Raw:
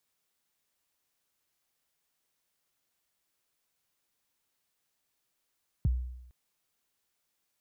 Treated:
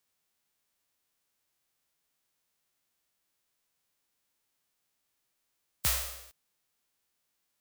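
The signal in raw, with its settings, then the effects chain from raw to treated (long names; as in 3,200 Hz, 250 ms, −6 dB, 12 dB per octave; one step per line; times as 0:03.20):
synth kick length 0.46 s, from 170 Hz, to 62 Hz, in 24 ms, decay 0.86 s, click off, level −21 dB
spectral envelope flattened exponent 0.1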